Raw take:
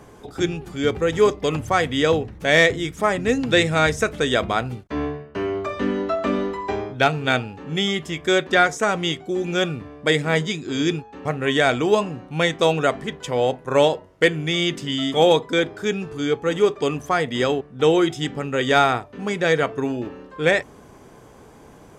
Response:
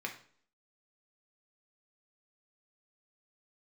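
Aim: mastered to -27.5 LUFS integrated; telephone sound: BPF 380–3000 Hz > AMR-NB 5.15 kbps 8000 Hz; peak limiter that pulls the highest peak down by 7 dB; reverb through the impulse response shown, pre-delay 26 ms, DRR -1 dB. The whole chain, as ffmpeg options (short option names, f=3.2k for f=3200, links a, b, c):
-filter_complex "[0:a]alimiter=limit=-12.5dB:level=0:latency=1,asplit=2[a][b];[1:a]atrim=start_sample=2205,adelay=26[c];[b][c]afir=irnorm=-1:irlink=0,volume=-1dB[d];[a][d]amix=inputs=2:normalize=0,highpass=380,lowpass=3k,volume=-1.5dB" -ar 8000 -c:a libopencore_amrnb -b:a 5150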